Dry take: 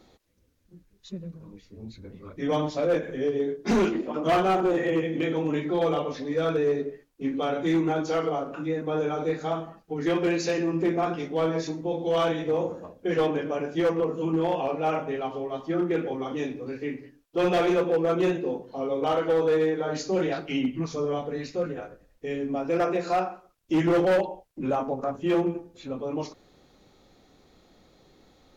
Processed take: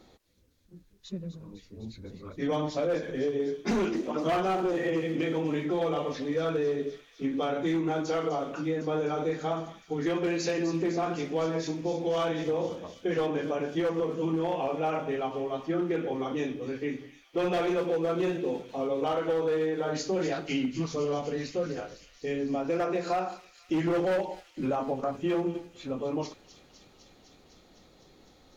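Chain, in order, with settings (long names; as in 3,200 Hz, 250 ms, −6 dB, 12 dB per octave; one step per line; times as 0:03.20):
downward compressor, threshold −25 dBFS, peak gain reduction 5.5 dB
on a send: delay with a high-pass on its return 253 ms, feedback 81%, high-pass 3,500 Hz, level −9 dB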